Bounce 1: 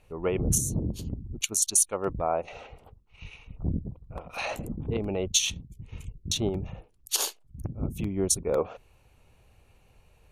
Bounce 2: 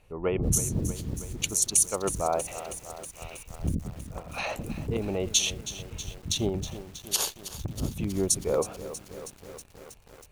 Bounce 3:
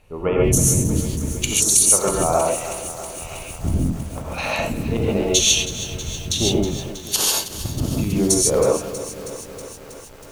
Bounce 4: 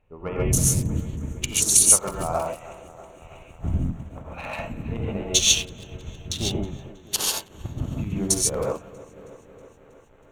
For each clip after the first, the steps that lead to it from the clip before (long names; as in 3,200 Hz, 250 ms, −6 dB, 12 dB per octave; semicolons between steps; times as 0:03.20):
feedback echo at a low word length 320 ms, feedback 80%, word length 7 bits, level −13 dB
reverb whose tail is shaped and stops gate 170 ms rising, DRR −3 dB; level +5 dB
adaptive Wiener filter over 9 samples; dynamic equaliser 390 Hz, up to −7 dB, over −32 dBFS, Q 0.87; expander for the loud parts 1.5 to 1, over −36 dBFS; level +1 dB